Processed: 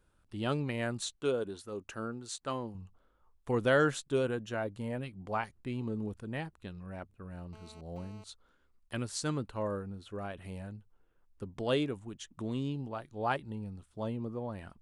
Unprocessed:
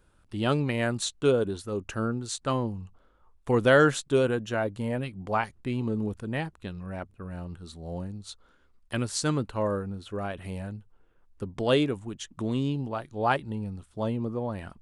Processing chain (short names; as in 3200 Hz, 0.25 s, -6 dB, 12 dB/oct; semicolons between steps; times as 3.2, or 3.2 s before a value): 1.16–2.75 low shelf 160 Hz -10.5 dB; 7.53–8.24 GSM buzz -49 dBFS; gain -7 dB